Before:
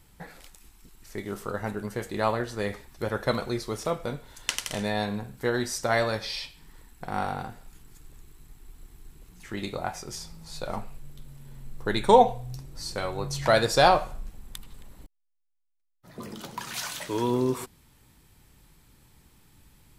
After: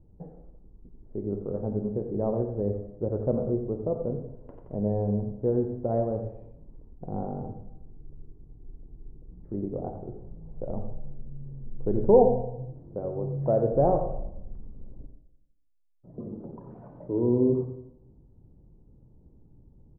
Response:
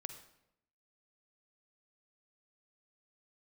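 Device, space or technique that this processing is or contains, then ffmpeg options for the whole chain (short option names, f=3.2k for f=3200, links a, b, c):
next room: -filter_complex "[0:a]asettb=1/sr,asplit=3[a][b][c];[a]atrim=end=12.414[d];[b]atrim=start=12.41:end=13.72,asetpts=PTS-STARTPTS,afade=t=in:d=0.004:c=qsin,afade=t=out:st=1.306:d=0.004:c=qsin,highpass=f=130:p=1[e];[c]atrim=start=13.716[f];[d][e]acrossfade=d=0.004:c1=hsin:c2=qsin[g];[g][f]acrossfade=d=0.004:c1=qsin:c2=hsin,lowpass=f=570:w=0.5412,lowpass=f=570:w=1.3066[h];[1:a]atrim=start_sample=2205[i];[h][i]afir=irnorm=-1:irlink=0,asplit=2[j][k];[k]adelay=87.46,volume=-10dB,highshelf=f=4k:g=-1.97[l];[j][l]amix=inputs=2:normalize=0,volume=6dB"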